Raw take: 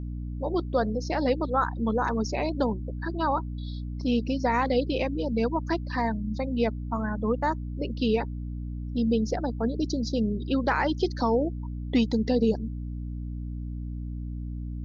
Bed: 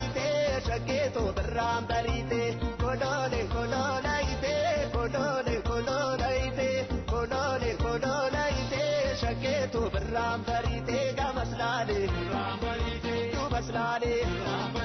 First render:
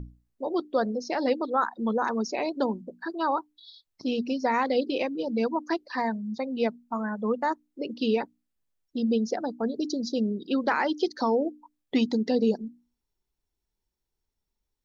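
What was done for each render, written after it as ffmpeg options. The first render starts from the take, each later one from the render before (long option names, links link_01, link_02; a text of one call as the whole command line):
ffmpeg -i in.wav -af "bandreject=frequency=60:width_type=h:width=6,bandreject=frequency=120:width_type=h:width=6,bandreject=frequency=180:width_type=h:width=6,bandreject=frequency=240:width_type=h:width=6,bandreject=frequency=300:width_type=h:width=6" out.wav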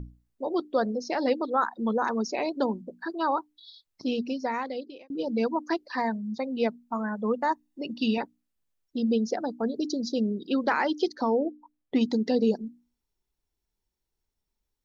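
ffmpeg -i in.wav -filter_complex "[0:a]asettb=1/sr,asplit=3[link_01][link_02][link_03];[link_01]atrim=end=7.494[link_04];[link_02]atrim=start=7.49:end=8.18,asetpts=PTS-STARTPTS,afade=type=in:duration=0.004:curve=qsin,afade=type=out:start_time=0.686:duration=0.004:curve=qsin,aecho=1:1:1.1:0.65,atrim=end_sample=30429[link_05];[link_03]atrim=start=8.176[link_06];[link_04][link_05]acrossfade=duration=0.004:curve1=hsin:curve2=qsin[link_07];[link_07][link_06]acrossfade=duration=0.004:curve1=qsin:curve2=hsin,asettb=1/sr,asplit=3[link_08][link_09][link_10];[link_08]atrim=end=11.154[link_11];[link_09]atrim=start=11.15:end=12.01,asetpts=PTS-STARTPTS,afade=type=in:duration=0.004:curve=qsin,afade=type=out:start_time=0.856:duration=0.004:curve=qsin,highshelf=frequency=2300:gain=-10.5[link_12];[link_10]atrim=start=12.006[link_13];[link_11][link_12]acrossfade=duration=0.004:curve1=hsin:curve2=qsin[link_14];[link_14][link_13]acrossfade=duration=0.004:curve1=qsin:curve2=hsin,asplit=2[link_15][link_16];[link_15]atrim=end=5.1,asetpts=PTS-STARTPTS,afade=type=out:start_time=4.08:duration=1.02[link_17];[link_16]atrim=start=5.1,asetpts=PTS-STARTPTS,afade=type=in:duration=0.004:curve=hsin[link_18];[link_17][link_18]concat=n=2:v=0:a=1" out.wav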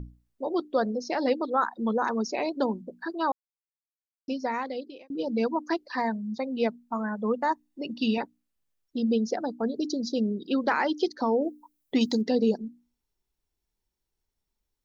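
ffmpeg -i in.wav -filter_complex "[0:a]asettb=1/sr,asplit=3[link_01][link_02][link_03];[link_01]atrim=end=11.414[link_04];[link_02]atrim=start=11.41:end=12.22,asetpts=PTS-STARTPTS,afade=type=in:duration=0.004:curve=qsin,afade=type=out:start_time=0.806:duration=0.004:curve=qsin,aemphasis=mode=production:type=75kf[link_05];[link_03]atrim=start=12.216[link_06];[link_04][link_05]acrossfade=duration=0.004:curve1=hsin:curve2=qsin[link_07];[link_07][link_06]acrossfade=duration=0.004:curve1=qsin:curve2=hsin,asplit=3[link_08][link_09][link_10];[link_08]atrim=end=3.32,asetpts=PTS-STARTPTS,afade=type=out:start_time=3.316:duration=0.004:curve=hsin[link_11];[link_09]atrim=start=3.32:end=4.28,asetpts=PTS-STARTPTS,volume=0[link_12];[link_10]atrim=start=4.28,asetpts=PTS-STARTPTS,afade=type=in:duration=0.004:curve=hsin[link_13];[link_11][link_12][link_13]concat=n=3:v=0:a=1" out.wav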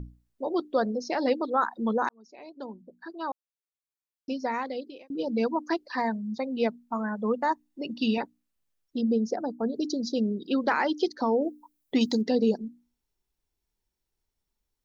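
ffmpeg -i in.wav -filter_complex "[0:a]asettb=1/sr,asplit=3[link_01][link_02][link_03];[link_01]atrim=end=9.014[link_04];[link_02]atrim=start=9.01:end=9.73,asetpts=PTS-STARTPTS,afade=type=in:duration=0.004:curve=qsin,afade=type=out:start_time=0.716:duration=0.004:curve=qsin,equalizer=frequency=3000:width=1.2:gain=-15[link_05];[link_03]atrim=start=9.726[link_06];[link_04][link_05]acrossfade=duration=0.004:curve1=hsin:curve2=qsin[link_07];[link_07][link_06]acrossfade=duration=0.004:curve1=qsin:curve2=hsin,asplit=2[link_08][link_09];[link_08]atrim=end=2.09,asetpts=PTS-STARTPTS,afade=type=out:start_time=2.086:duration=0.004:curve=hsin[link_10];[link_09]atrim=start=2.09,asetpts=PTS-STARTPTS,afade=type=in:duration=2.42[link_11];[link_10][link_11]concat=n=2:v=0:a=1" out.wav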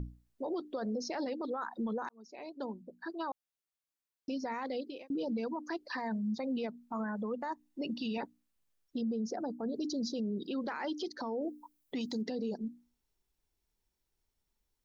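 ffmpeg -i in.wav -af "acompressor=threshold=-27dB:ratio=6,alimiter=level_in=5dB:limit=-24dB:level=0:latency=1:release=17,volume=-5dB" out.wav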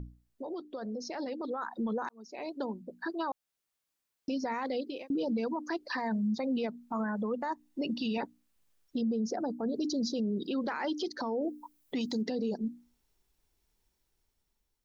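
ffmpeg -i in.wav -af "alimiter=level_in=8.5dB:limit=-24dB:level=0:latency=1:release=407,volume=-8.5dB,dynaudnorm=framelen=990:gausssize=3:maxgain=7dB" out.wav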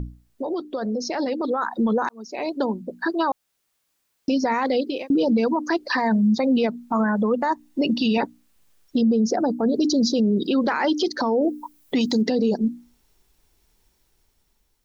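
ffmpeg -i in.wav -af "volume=12dB" out.wav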